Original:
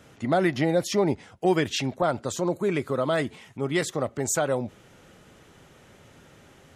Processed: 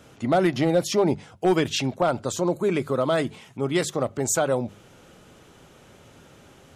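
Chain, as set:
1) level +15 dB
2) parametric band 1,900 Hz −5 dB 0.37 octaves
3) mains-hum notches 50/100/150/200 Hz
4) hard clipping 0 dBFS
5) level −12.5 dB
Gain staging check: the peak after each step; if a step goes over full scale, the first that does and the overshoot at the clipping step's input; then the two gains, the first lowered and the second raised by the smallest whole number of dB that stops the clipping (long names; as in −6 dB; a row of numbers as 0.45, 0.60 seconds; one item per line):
+4.5, +4.5, +4.5, 0.0, −12.5 dBFS
step 1, 4.5 dB
step 1 +10 dB, step 5 −7.5 dB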